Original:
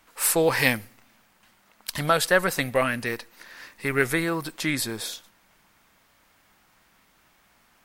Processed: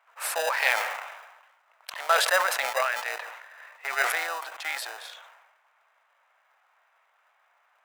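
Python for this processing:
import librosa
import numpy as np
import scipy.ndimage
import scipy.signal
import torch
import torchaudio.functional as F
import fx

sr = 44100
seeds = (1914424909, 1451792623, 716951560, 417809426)

p1 = fx.wiener(x, sr, points=9)
p2 = fx.high_shelf(p1, sr, hz=4500.0, db=-11.5)
p3 = fx.sample_hold(p2, sr, seeds[0], rate_hz=1100.0, jitter_pct=0)
p4 = p2 + (p3 * 10.0 ** (-6.0 / 20.0))
p5 = scipy.signal.sosfilt(scipy.signal.butter(6, 630.0, 'highpass', fs=sr, output='sos'), p4)
y = fx.sustainer(p5, sr, db_per_s=48.0)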